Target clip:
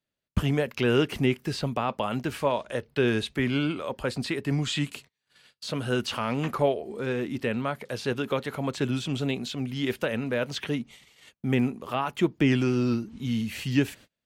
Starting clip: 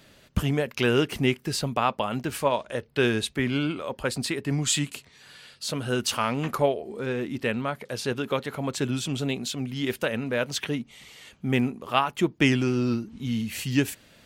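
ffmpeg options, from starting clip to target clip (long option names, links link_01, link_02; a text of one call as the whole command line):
ffmpeg -i in.wav -filter_complex "[0:a]acrossover=split=4400[link_01][link_02];[link_02]acompressor=threshold=-44dB:ratio=4:attack=1:release=60[link_03];[link_01][link_03]amix=inputs=2:normalize=0,agate=range=-33dB:threshold=-46dB:ratio=16:detection=peak,acrossover=split=580[link_04][link_05];[link_05]alimiter=limit=-20dB:level=0:latency=1:release=16[link_06];[link_04][link_06]amix=inputs=2:normalize=0" out.wav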